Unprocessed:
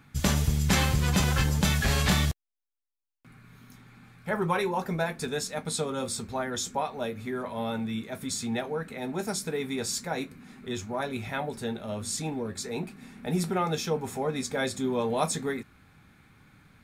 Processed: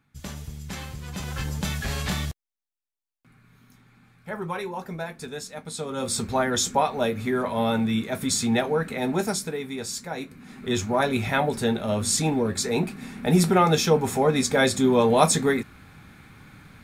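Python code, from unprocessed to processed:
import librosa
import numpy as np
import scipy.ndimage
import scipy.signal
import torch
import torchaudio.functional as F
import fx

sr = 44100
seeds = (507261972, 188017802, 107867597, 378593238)

y = fx.gain(x, sr, db=fx.line((1.05, -12.0), (1.49, -4.0), (5.74, -4.0), (6.21, 8.0), (9.14, 8.0), (9.63, -1.0), (10.19, -1.0), (10.76, 9.0)))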